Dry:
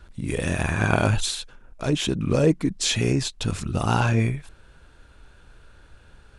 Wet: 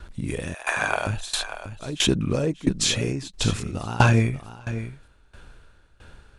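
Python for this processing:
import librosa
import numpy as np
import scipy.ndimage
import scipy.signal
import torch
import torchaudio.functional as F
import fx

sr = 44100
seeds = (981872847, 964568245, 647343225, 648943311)

y = fx.highpass(x, sr, hz=550.0, slope=24, at=(0.54, 1.07))
y = y + 10.0 ** (-13.0 / 20.0) * np.pad(y, (int(588 * sr / 1000.0), 0))[:len(y)]
y = fx.tremolo_decay(y, sr, direction='decaying', hz=1.5, depth_db=19)
y = y * 10.0 ** (7.0 / 20.0)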